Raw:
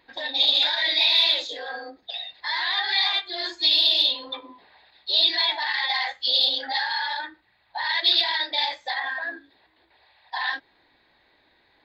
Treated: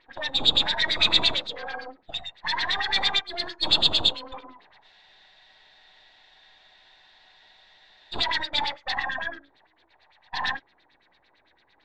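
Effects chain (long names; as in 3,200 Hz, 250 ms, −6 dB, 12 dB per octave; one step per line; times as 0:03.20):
gain on one half-wave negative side −12 dB
auto-filter low-pass sine 8.9 Hz 790–4,600 Hz
frozen spectrum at 0:04.86, 3.27 s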